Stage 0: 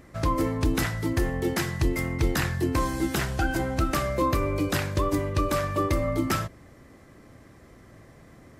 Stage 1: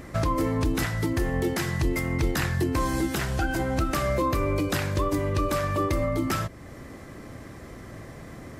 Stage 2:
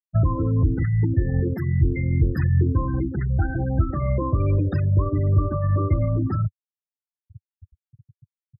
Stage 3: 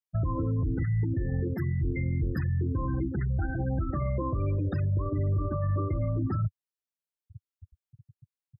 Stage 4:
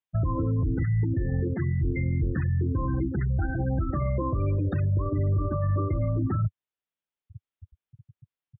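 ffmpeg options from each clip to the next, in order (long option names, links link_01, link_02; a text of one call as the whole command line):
ffmpeg -i in.wav -af "alimiter=level_in=1.5dB:limit=-24dB:level=0:latency=1:release=417,volume=-1.5dB,volume=9dB" out.wav
ffmpeg -i in.wav -af "afftfilt=real='re*gte(hypot(re,im),0.1)':imag='im*gte(hypot(re,im),0.1)':win_size=1024:overlap=0.75,equalizer=frequency=97:width=0.72:gain=14.5,volume=-3.5dB" out.wav
ffmpeg -i in.wav -af "alimiter=limit=-18.5dB:level=0:latency=1:release=57,volume=-3dB" out.wav
ffmpeg -i in.wav -af "aresample=8000,aresample=44100,volume=2.5dB" out.wav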